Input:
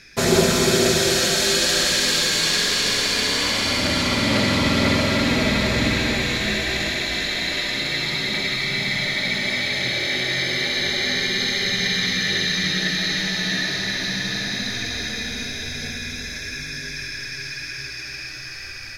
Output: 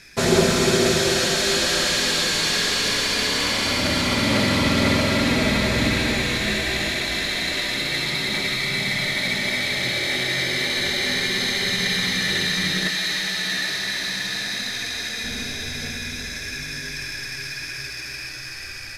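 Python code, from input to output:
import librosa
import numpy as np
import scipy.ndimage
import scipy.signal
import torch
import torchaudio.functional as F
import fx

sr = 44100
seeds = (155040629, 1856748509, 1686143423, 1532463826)

y = fx.cvsd(x, sr, bps=64000)
y = fx.low_shelf(y, sr, hz=420.0, db=-10.0, at=(12.88, 15.24))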